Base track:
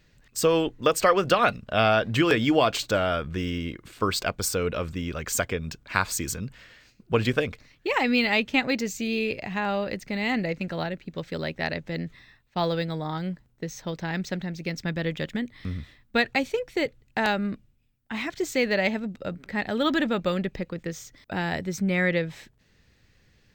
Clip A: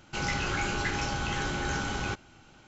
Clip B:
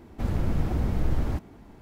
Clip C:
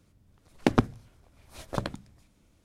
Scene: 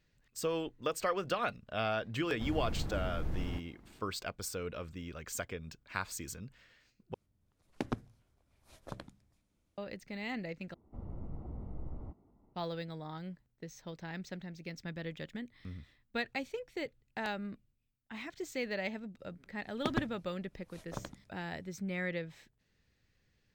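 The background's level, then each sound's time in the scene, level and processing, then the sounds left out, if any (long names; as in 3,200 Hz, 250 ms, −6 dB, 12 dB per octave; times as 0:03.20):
base track −13 dB
0:02.21: mix in B −11.5 dB
0:07.14: overwrite with C −14 dB
0:10.74: overwrite with B −17.5 dB + Savitzky-Golay smoothing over 65 samples
0:19.19: mix in C −11.5 dB
not used: A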